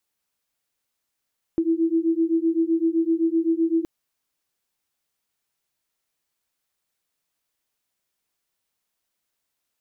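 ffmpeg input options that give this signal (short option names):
-f lavfi -i "aevalsrc='0.0841*(sin(2*PI*325*t)+sin(2*PI*332.8*t))':d=2.27:s=44100"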